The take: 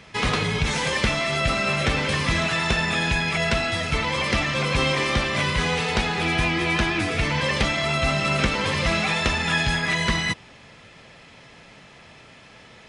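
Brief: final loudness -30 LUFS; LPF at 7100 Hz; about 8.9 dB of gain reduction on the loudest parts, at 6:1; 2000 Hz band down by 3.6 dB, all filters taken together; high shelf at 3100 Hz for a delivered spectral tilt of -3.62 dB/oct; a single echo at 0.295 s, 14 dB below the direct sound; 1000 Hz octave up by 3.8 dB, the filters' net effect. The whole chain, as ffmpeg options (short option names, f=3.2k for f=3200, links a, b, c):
-af "lowpass=7.1k,equalizer=f=1k:t=o:g=6.5,equalizer=f=2k:t=o:g=-3.5,highshelf=f=3.1k:g=-6.5,acompressor=threshold=-27dB:ratio=6,aecho=1:1:295:0.2"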